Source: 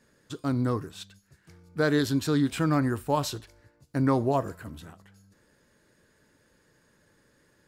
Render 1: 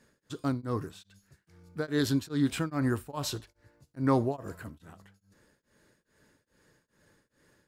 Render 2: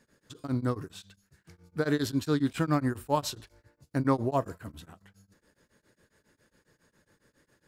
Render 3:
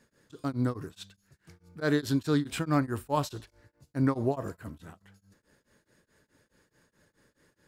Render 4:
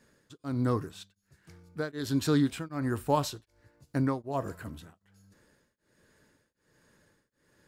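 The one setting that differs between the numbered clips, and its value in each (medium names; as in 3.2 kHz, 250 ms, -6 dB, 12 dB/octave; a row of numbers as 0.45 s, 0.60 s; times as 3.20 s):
tremolo of two beating tones, nulls at: 2.4 Hz, 7.3 Hz, 4.7 Hz, 1.3 Hz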